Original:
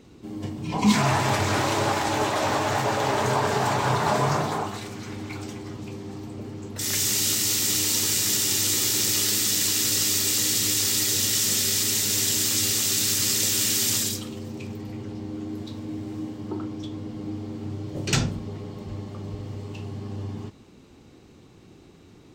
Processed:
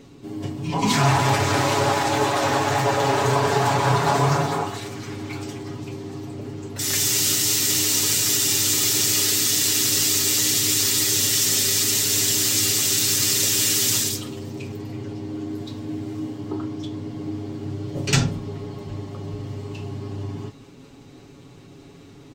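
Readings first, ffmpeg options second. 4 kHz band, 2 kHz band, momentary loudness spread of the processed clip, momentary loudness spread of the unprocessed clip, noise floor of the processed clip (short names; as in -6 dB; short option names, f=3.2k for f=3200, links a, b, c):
+3.0 dB, +3.0 dB, 16 LU, 16 LU, -45 dBFS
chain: -af "aecho=1:1:7.2:0.65,areverse,acompressor=mode=upward:threshold=-41dB:ratio=2.5,areverse,volume=1.5dB"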